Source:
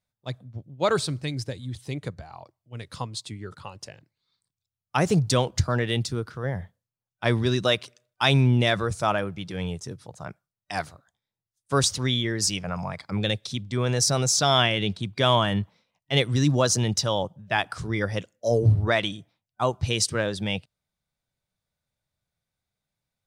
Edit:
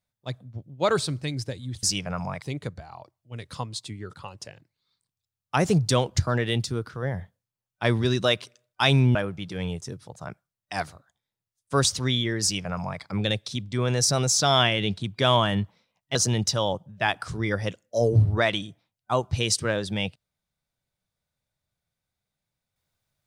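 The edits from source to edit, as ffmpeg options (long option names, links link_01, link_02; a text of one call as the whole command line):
ffmpeg -i in.wav -filter_complex "[0:a]asplit=5[link_01][link_02][link_03][link_04][link_05];[link_01]atrim=end=1.832[link_06];[link_02]atrim=start=12.408:end=13.002[link_07];[link_03]atrim=start=1.828:end=8.562[link_08];[link_04]atrim=start=9.138:end=16.142[link_09];[link_05]atrim=start=16.648[link_10];[link_06][link_07]acrossfade=duration=0.004:curve1=hsin:curve2=hsin[link_11];[link_11][link_08]acrossfade=duration=0.004:curve1=hsin:curve2=hsin[link_12];[link_12][link_09]acrossfade=duration=0.004:curve1=hsin:curve2=hsin[link_13];[link_13][link_10]acrossfade=duration=0.004:curve1=hsin:curve2=hsin" out.wav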